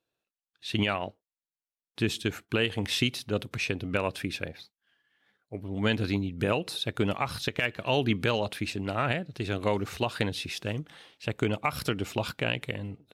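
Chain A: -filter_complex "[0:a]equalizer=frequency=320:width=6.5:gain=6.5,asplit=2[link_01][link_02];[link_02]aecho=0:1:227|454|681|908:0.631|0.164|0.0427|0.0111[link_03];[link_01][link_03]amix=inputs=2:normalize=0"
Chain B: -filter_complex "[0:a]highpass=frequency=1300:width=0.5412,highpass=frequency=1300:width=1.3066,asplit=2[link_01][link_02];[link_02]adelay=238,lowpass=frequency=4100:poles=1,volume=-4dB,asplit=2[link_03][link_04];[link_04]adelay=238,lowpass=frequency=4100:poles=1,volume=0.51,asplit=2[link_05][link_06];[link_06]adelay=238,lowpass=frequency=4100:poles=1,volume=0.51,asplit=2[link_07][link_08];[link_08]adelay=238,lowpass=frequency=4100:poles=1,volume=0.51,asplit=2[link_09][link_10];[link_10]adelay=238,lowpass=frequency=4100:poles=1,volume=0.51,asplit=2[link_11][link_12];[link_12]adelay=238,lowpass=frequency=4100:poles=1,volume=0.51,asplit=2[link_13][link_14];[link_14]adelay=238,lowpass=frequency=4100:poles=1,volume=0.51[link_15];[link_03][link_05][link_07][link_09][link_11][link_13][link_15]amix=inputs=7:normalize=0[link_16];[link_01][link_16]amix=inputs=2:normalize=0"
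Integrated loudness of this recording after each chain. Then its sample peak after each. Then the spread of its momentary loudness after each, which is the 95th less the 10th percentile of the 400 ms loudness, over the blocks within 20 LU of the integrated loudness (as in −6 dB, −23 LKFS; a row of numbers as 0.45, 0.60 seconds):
−28.0, −33.5 LKFS; −9.0, −12.5 dBFS; 10, 11 LU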